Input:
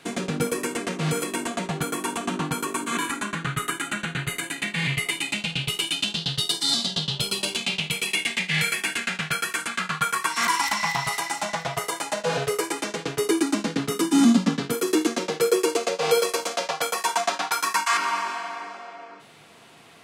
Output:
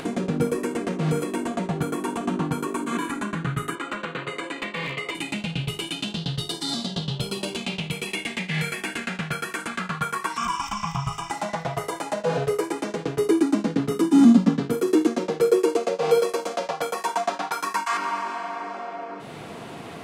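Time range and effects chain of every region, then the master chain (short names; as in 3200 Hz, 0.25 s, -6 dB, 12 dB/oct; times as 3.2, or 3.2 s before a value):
3.75–5.15 speaker cabinet 340–7100 Hz, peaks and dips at 520 Hz +8 dB, 750 Hz -5 dB, 1100 Hz +9 dB, 1600 Hz -4 dB, 6300 Hz -7 dB + hard clip -20.5 dBFS
10.37–11.31 low shelf 100 Hz +11.5 dB + fixed phaser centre 2800 Hz, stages 8 + comb 1.7 ms, depth 51%
whole clip: tilt shelf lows +6.5 dB, about 1200 Hz; notches 50/100/150 Hz; upward compressor, threshold -22 dBFS; gain -2.5 dB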